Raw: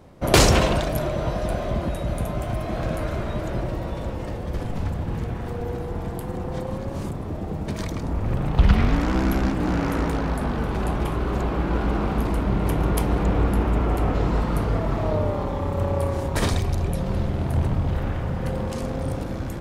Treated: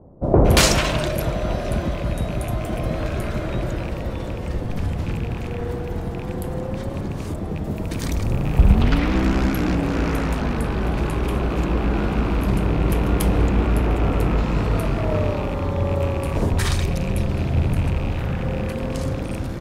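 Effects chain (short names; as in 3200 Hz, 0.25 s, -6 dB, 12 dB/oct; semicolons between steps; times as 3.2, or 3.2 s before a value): rattling part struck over -23 dBFS, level -28 dBFS; 7.41–8.59 high shelf 8000 Hz +10 dB; bands offset in time lows, highs 0.23 s, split 890 Hz; gain +2.5 dB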